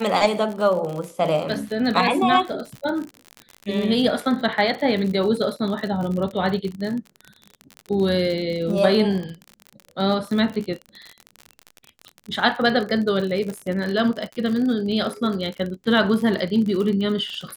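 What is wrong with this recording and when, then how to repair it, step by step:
crackle 52 per s -27 dBFS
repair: de-click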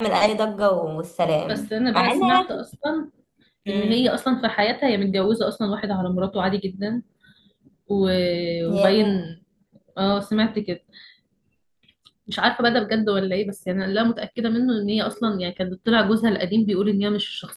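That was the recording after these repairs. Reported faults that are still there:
nothing left

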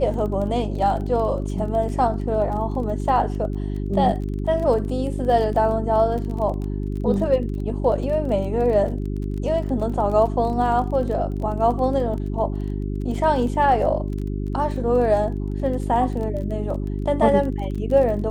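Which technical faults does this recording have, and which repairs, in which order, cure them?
crackle 22 per s -30 dBFS
hum 50 Hz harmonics 8 -26 dBFS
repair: de-click; de-hum 50 Hz, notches 8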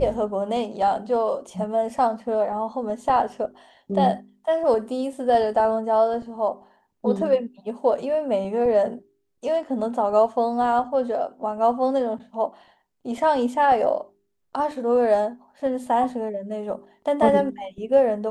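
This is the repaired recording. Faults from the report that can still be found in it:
nothing left

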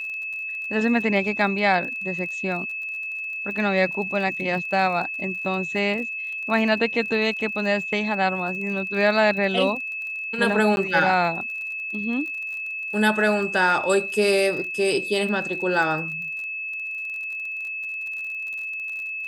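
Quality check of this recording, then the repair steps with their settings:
crackle 35 per s -33 dBFS
whine 2.6 kHz -28 dBFS
10.76–10.77 s: dropout 11 ms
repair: de-click; band-stop 2.6 kHz, Q 30; interpolate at 10.76 s, 11 ms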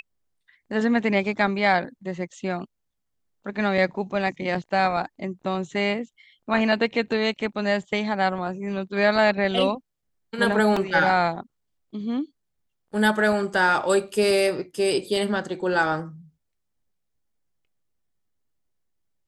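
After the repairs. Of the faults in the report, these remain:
nothing left

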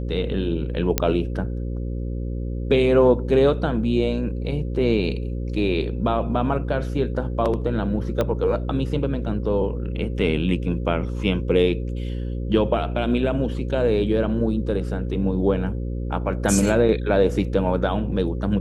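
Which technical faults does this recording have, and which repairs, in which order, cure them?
buzz 60 Hz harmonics 9 -27 dBFS
0.98 s: pop -2 dBFS
8.21 s: pop -10 dBFS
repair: de-click; de-hum 60 Hz, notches 9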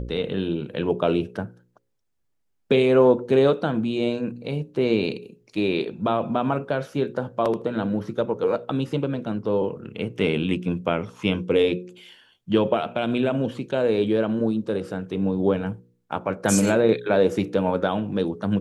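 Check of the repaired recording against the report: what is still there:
8.21 s: pop

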